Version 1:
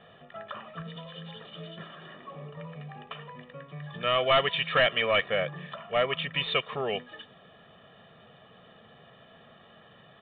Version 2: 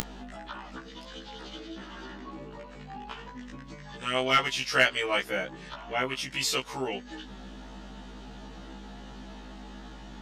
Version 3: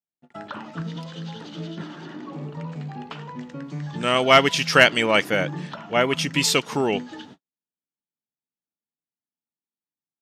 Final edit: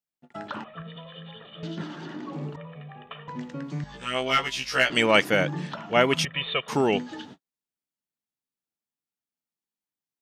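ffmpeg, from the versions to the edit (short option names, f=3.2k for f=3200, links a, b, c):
-filter_complex "[0:a]asplit=3[a][b][c];[2:a]asplit=5[d][e][f][g][h];[d]atrim=end=0.642[i];[a]atrim=start=0.638:end=1.632[j];[e]atrim=start=1.628:end=2.562[k];[b]atrim=start=2.558:end=3.282[l];[f]atrim=start=3.278:end=3.842[m];[1:a]atrim=start=3.838:end=4.902[n];[g]atrim=start=4.898:end=6.252[o];[c]atrim=start=6.248:end=6.682[p];[h]atrim=start=6.678[q];[i][j]acrossfade=d=0.004:c1=hsin:c2=hsin[r];[r][k]acrossfade=d=0.004:c1=hsin:c2=hsin[s];[s][l]acrossfade=d=0.004:c1=hsin:c2=hsin[t];[t][m]acrossfade=d=0.004:c1=hsin:c2=hsin[u];[u][n]acrossfade=d=0.004:c1=hsin:c2=hsin[v];[v][o]acrossfade=d=0.004:c1=hsin:c2=hsin[w];[w][p]acrossfade=d=0.004:c1=hsin:c2=hsin[x];[x][q]acrossfade=d=0.004:c1=hsin:c2=hsin"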